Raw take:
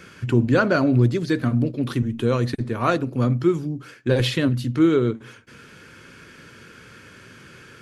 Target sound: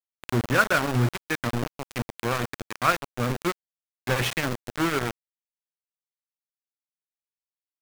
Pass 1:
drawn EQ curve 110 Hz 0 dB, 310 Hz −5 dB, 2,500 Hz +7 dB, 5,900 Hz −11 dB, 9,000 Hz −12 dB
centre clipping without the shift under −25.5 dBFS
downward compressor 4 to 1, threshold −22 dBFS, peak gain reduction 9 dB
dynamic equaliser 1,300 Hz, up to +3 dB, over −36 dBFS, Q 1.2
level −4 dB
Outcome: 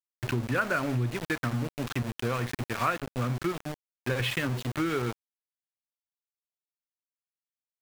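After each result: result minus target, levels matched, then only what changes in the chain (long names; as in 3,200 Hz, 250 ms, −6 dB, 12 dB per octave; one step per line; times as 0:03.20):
downward compressor: peak gain reduction +9 dB; centre clipping without the shift: distortion −8 dB
remove: downward compressor 4 to 1, threshold −22 dBFS, peak gain reduction 9 dB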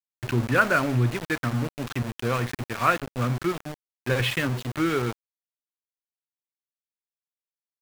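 centre clipping without the shift: distortion −8 dB
change: centre clipping without the shift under −19 dBFS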